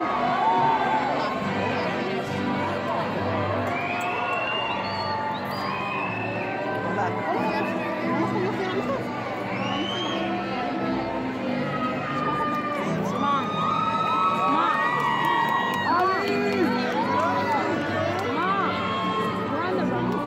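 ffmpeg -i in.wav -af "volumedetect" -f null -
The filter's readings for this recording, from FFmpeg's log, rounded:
mean_volume: -24.9 dB
max_volume: -10.6 dB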